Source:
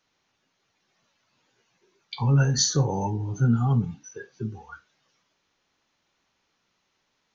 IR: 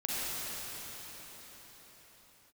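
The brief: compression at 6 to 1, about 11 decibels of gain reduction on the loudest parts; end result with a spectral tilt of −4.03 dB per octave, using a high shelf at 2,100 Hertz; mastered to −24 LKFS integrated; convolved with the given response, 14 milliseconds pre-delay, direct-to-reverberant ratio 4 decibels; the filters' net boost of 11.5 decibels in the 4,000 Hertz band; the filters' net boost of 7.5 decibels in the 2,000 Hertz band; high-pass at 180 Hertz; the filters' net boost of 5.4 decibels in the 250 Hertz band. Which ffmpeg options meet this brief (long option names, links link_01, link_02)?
-filter_complex "[0:a]highpass=180,equalizer=frequency=250:width_type=o:gain=8.5,equalizer=frequency=2000:width_type=o:gain=6.5,highshelf=frequency=2100:gain=7,equalizer=frequency=4000:width_type=o:gain=5.5,acompressor=threshold=-21dB:ratio=6,asplit=2[link_01][link_02];[1:a]atrim=start_sample=2205,adelay=14[link_03];[link_02][link_03]afir=irnorm=-1:irlink=0,volume=-11.5dB[link_04];[link_01][link_04]amix=inputs=2:normalize=0,volume=2dB"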